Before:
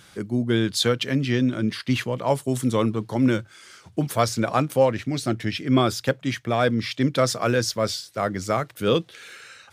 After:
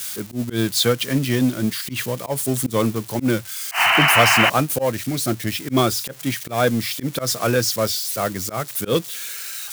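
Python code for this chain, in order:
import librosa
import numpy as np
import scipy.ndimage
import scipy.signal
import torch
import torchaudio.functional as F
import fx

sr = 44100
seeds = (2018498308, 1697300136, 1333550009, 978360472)

p1 = x + 0.5 * 10.0 ** (-22.0 / 20.0) * np.diff(np.sign(x), prepend=np.sign(x[:1]))
p2 = fx.spec_paint(p1, sr, seeds[0], shape='noise', start_s=3.71, length_s=0.79, low_hz=640.0, high_hz=3100.0, level_db=-19.0)
p3 = fx.auto_swell(p2, sr, attack_ms=101.0)
p4 = np.clip(10.0 ** (21.0 / 20.0) * p3, -1.0, 1.0) / 10.0 ** (21.0 / 20.0)
p5 = p3 + (p4 * 10.0 ** (-6.0 / 20.0))
p6 = fx.upward_expand(p5, sr, threshold_db=-27.0, expansion=1.5)
y = p6 * 10.0 ** (2.5 / 20.0)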